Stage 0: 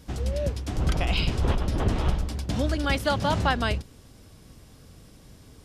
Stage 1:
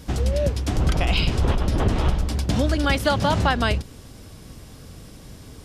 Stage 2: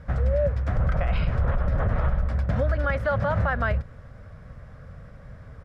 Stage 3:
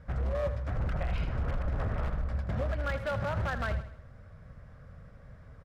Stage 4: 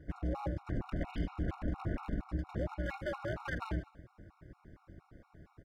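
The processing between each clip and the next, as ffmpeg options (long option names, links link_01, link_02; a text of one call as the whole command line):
ffmpeg -i in.wav -af "acompressor=threshold=-27dB:ratio=2,volume=8dB" out.wav
ffmpeg -i in.wav -af "firequalizer=gain_entry='entry(140,0);entry(330,-17);entry(550,3);entry(850,-6);entry(1300,3);entry(1800,1);entry(2800,-16);entry(4600,-21);entry(11000,-30)':delay=0.05:min_phase=1,alimiter=limit=-15dB:level=0:latency=1:release=45" out.wav
ffmpeg -i in.wav -filter_complex "[0:a]aeval=exprs='0.126*(abs(mod(val(0)/0.126+3,4)-2)-1)':channel_layout=same,asplit=2[link_01][link_02];[link_02]aecho=0:1:80|160|240|320:0.251|0.111|0.0486|0.0214[link_03];[link_01][link_03]amix=inputs=2:normalize=0,volume=-7.5dB" out.wav
ffmpeg -i in.wav -af "tremolo=f=240:d=0.919,afftfilt=real='re*gt(sin(2*PI*4.3*pts/sr)*(1-2*mod(floor(b*sr/1024/730),2)),0)':imag='im*gt(sin(2*PI*4.3*pts/sr)*(1-2*mod(floor(b*sr/1024/730),2)),0)':win_size=1024:overlap=0.75,volume=1dB" out.wav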